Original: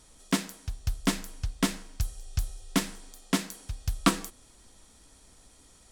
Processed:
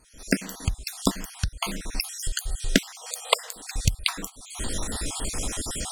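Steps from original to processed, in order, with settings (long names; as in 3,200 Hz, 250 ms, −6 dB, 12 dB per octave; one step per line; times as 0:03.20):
time-frequency cells dropped at random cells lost 47%
camcorder AGC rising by 68 dB per second
0:02.91–0:03.56: linear-phase brick-wall high-pass 430 Hz
level −1 dB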